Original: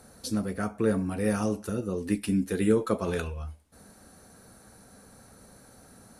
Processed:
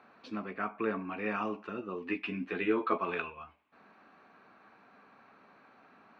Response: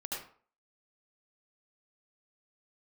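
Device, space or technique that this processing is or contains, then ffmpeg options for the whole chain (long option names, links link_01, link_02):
phone earpiece: -filter_complex "[0:a]asettb=1/sr,asplit=3[link_01][link_02][link_03];[link_01]atrim=end=2.084[link_04];[link_02]atrim=start=2.08:end=2.98,asetpts=PTS-STARTPTS,afade=type=in:duration=0.004:curve=qsin,afade=type=out:start_time=0.896:duration=0.004:curve=qsin,asplit=2[link_05][link_06];[link_06]adelay=12,volume=-2.5dB[link_07];[link_05][link_07]amix=inputs=2:normalize=0,atrim=end_sample=39690[link_08];[link_03]atrim=start=2.976[link_09];[link_04][link_08]acrossfade=duration=0.004:curve1=hsin:curve2=qsin[link_10];[link_10][link_09]acrossfade=duration=0.004:curve1=qsin:curve2=hsin,highpass=340,equalizer=frequency=510:width_type=q:width=4:gain=-9,equalizer=frequency=1100:width_type=q:width=4:gain=8,equalizer=frequency=2500:width_type=q:width=4:gain=9,lowpass=frequency=3000:width=0.5412,lowpass=frequency=3000:width=1.3066,volume=-2dB"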